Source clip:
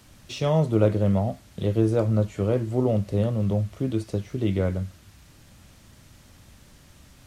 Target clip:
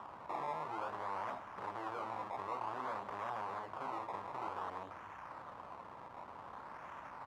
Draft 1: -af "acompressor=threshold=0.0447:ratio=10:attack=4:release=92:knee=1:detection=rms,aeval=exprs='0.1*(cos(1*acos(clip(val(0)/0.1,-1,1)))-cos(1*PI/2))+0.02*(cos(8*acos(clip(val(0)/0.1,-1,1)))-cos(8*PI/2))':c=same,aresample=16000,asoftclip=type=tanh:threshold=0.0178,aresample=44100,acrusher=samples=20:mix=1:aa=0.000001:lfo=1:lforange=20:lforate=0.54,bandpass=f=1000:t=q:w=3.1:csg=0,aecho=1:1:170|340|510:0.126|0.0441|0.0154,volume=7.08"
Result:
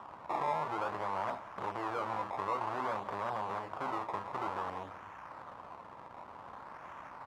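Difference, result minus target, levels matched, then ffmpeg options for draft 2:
echo-to-direct +8.5 dB; saturation: distortion -5 dB
-af "acompressor=threshold=0.0447:ratio=10:attack=4:release=92:knee=1:detection=rms,aeval=exprs='0.1*(cos(1*acos(clip(val(0)/0.1,-1,1)))-cos(1*PI/2))+0.02*(cos(8*acos(clip(val(0)/0.1,-1,1)))-cos(8*PI/2))':c=same,aresample=16000,asoftclip=type=tanh:threshold=0.00668,aresample=44100,acrusher=samples=20:mix=1:aa=0.000001:lfo=1:lforange=20:lforate=0.54,bandpass=f=1000:t=q:w=3.1:csg=0,aecho=1:1:170|340:0.0473|0.0166,volume=7.08"

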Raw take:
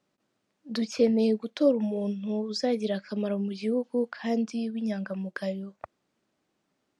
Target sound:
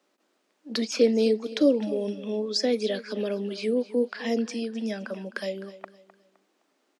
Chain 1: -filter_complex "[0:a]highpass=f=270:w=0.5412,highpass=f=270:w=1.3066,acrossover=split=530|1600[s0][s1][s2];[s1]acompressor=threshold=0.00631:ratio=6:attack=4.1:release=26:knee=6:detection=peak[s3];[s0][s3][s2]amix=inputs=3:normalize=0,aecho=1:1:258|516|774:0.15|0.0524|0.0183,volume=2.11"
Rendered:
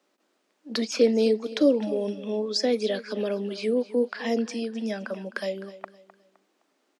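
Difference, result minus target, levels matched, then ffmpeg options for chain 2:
compression: peak gain reduction -7 dB
-filter_complex "[0:a]highpass=f=270:w=0.5412,highpass=f=270:w=1.3066,acrossover=split=530|1600[s0][s1][s2];[s1]acompressor=threshold=0.00237:ratio=6:attack=4.1:release=26:knee=6:detection=peak[s3];[s0][s3][s2]amix=inputs=3:normalize=0,aecho=1:1:258|516|774:0.15|0.0524|0.0183,volume=2.11"

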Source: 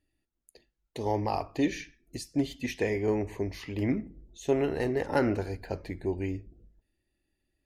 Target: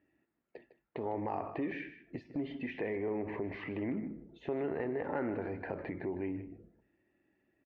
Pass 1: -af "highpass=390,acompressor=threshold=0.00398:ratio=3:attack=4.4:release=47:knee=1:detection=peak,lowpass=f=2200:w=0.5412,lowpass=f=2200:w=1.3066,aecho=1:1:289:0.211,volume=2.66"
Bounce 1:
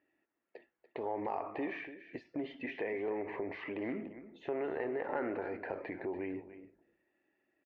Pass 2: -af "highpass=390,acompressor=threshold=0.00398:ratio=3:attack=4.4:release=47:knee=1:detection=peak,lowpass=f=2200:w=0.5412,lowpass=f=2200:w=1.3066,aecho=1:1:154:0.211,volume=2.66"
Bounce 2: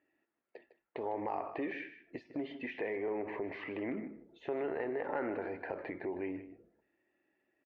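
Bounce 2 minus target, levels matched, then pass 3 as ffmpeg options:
125 Hz band -8.5 dB
-af "highpass=170,acompressor=threshold=0.00398:ratio=3:attack=4.4:release=47:knee=1:detection=peak,lowpass=f=2200:w=0.5412,lowpass=f=2200:w=1.3066,aecho=1:1:154:0.211,volume=2.66"

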